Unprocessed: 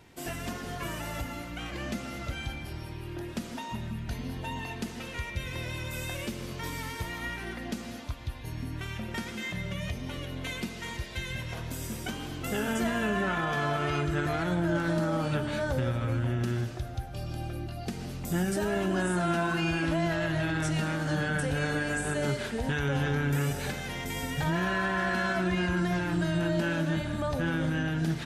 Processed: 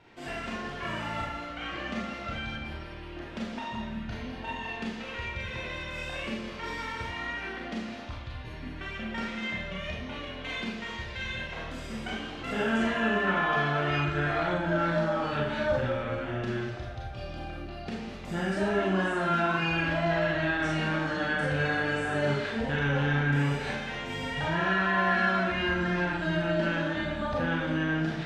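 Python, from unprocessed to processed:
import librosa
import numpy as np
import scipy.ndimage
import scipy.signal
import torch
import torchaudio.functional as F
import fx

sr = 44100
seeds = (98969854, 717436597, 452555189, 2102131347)

y = scipy.signal.sosfilt(scipy.signal.butter(2, 3300.0, 'lowpass', fs=sr, output='sos'), x)
y = fx.low_shelf(y, sr, hz=450.0, db=-6.0)
y = fx.rev_schroeder(y, sr, rt60_s=0.48, comb_ms=28, drr_db=-3.0)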